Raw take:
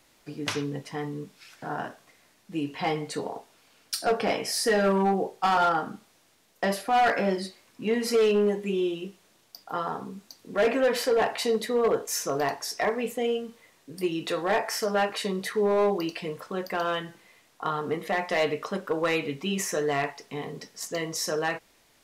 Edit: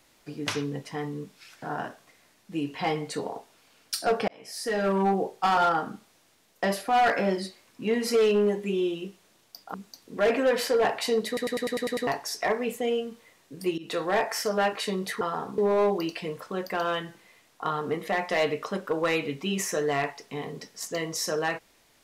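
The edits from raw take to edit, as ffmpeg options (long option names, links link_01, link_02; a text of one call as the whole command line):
ffmpeg -i in.wav -filter_complex "[0:a]asplit=14[link_01][link_02][link_03][link_04][link_05][link_06][link_07][link_08][link_09][link_10][link_11][link_12][link_13][link_14];[link_01]atrim=end=4.28,asetpts=PTS-STARTPTS,afade=type=out:start_time=4.276:duration=0.004:curve=hsin[link_15];[link_02]atrim=start=4.28:end=9.742,asetpts=PTS-STARTPTS,afade=type=in:duration=0.79[link_16];[link_03]atrim=start=10.108:end=11.742[link_17];[link_04]atrim=start=11.638:end=11.742[link_18];[link_05]atrim=start=11.638:end=11.742[link_19];[link_06]atrim=start=11.638:end=11.742[link_20];[link_07]atrim=start=11.638:end=11.742[link_21];[link_08]atrim=start=11.638:end=11.742[link_22];[link_09]atrim=start=11.638:end=11.742[link_23];[link_10]atrim=start=11.638:end=11.742[link_24];[link_11]atrim=start=12.438:end=14.15,asetpts=PTS-STARTPTS,afade=type=out:start_time=1.708:duration=0.004:curve=hsin:silence=0.1[link_25];[link_12]atrim=start=14.15:end=15.582,asetpts=PTS-STARTPTS,afade=type=in:duration=0.25:curve=qsin:silence=0.1[link_26];[link_13]atrim=start=9.738:end=10.112[link_27];[link_14]atrim=start=15.578[link_28];[link_15][link_16]concat=n=2:v=0:a=1[link_29];[link_29][link_17]acrossfade=duration=0.004:curve1=hsin:curve2=hsin[link_30];[link_30][link_18]acrossfade=duration=0.004:curve1=hsin:curve2=hsin[link_31];[link_31][link_19]acrossfade=duration=0.004:curve1=hsin:curve2=hsin[link_32];[link_32][link_20]acrossfade=duration=0.004:curve1=hsin:curve2=hsin[link_33];[link_33][link_21]acrossfade=duration=0.004:curve1=hsin:curve2=hsin[link_34];[link_34][link_22]acrossfade=duration=0.004:curve1=hsin:curve2=hsin[link_35];[link_35][link_23]acrossfade=duration=0.004:curve1=hsin:curve2=hsin[link_36];[link_36][link_24]acrossfade=duration=0.004:curve1=hsin:curve2=hsin[link_37];[link_25][link_26]concat=n=2:v=0:a=1[link_38];[link_37][link_38]acrossfade=duration=0.004:curve1=hsin:curve2=hsin[link_39];[link_39][link_27]acrossfade=duration=0.004:curve1=hsin:curve2=hsin[link_40];[link_40][link_28]acrossfade=duration=0.004:curve1=hsin:curve2=hsin" out.wav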